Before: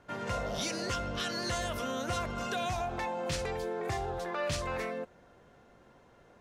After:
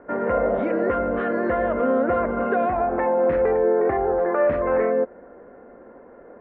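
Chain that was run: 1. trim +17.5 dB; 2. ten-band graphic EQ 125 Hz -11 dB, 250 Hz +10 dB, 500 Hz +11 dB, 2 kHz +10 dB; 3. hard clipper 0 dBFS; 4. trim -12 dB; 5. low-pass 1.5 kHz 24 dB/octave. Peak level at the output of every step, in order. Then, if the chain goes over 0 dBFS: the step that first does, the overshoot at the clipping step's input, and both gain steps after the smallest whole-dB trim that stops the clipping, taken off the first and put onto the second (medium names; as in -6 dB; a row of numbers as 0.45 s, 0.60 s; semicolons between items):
-6.0 dBFS, +3.5 dBFS, 0.0 dBFS, -12.0 dBFS, -11.0 dBFS; step 2, 3.5 dB; step 1 +13.5 dB, step 4 -8 dB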